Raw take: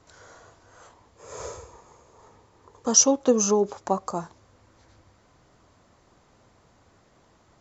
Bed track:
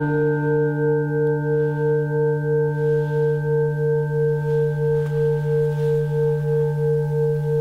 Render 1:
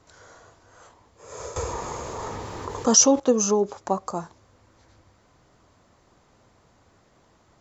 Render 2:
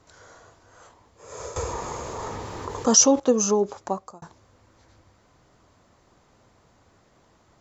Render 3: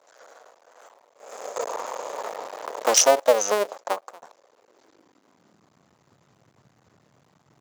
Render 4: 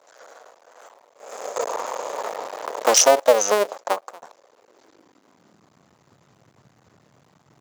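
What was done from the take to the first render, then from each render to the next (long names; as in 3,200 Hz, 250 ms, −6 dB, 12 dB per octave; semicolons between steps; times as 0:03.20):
0:01.56–0:03.20: envelope flattener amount 50%
0:03.80–0:04.22: fade out
sub-harmonics by changed cycles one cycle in 2, muted; high-pass filter sweep 560 Hz → 130 Hz, 0:04.36–0:05.96
level +3.5 dB; brickwall limiter −2 dBFS, peak gain reduction 3 dB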